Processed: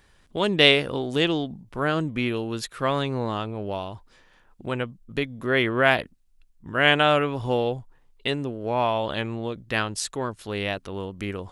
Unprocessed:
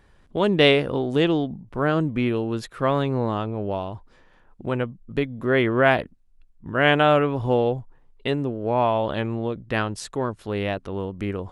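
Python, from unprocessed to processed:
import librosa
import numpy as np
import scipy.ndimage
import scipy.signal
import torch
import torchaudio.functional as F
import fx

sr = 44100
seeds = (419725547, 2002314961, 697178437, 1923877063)

y = fx.high_shelf(x, sr, hz=2000.0, db=11.5)
y = F.gain(torch.from_numpy(y), -4.0).numpy()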